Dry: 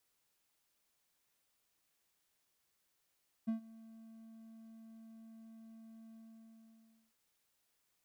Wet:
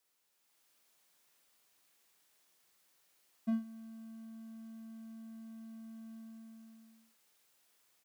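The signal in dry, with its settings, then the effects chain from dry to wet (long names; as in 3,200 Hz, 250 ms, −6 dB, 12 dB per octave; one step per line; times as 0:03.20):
note with an ADSR envelope triangle 224 Hz, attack 17 ms, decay 113 ms, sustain −22 dB, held 2.66 s, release 999 ms −29 dBFS
high-pass filter 230 Hz 6 dB per octave
automatic gain control gain up to 7 dB
double-tracking delay 44 ms −7 dB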